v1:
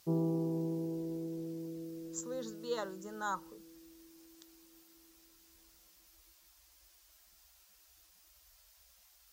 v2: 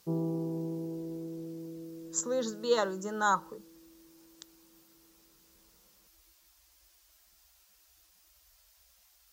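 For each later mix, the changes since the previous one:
speech +10.0 dB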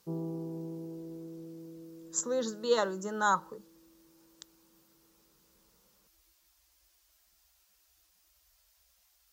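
background -4.5 dB

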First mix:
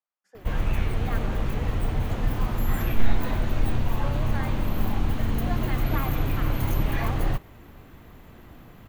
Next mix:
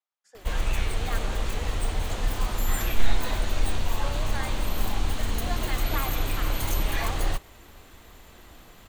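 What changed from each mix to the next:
master: add graphic EQ 125/250/4000/8000 Hz -10/-5/+6/+12 dB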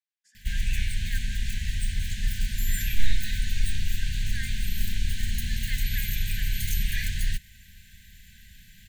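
master: add brick-wall FIR band-stop 230–1500 Hz

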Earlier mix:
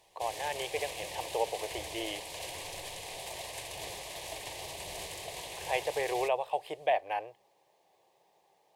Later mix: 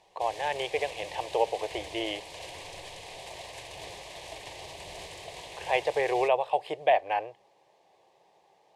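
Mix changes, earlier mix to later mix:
speech +5.5 dB; master: add distance through air 55 m

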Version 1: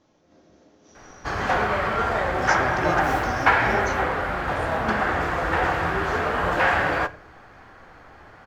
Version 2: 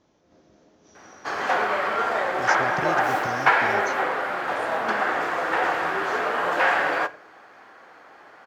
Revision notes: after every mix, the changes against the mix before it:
speech: send off; background: add high-pass 340 Hz 12 dB/octave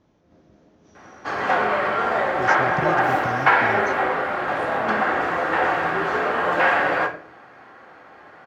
background: send +11.5 dB; master: add tone controls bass +7 dB, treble -7 dB

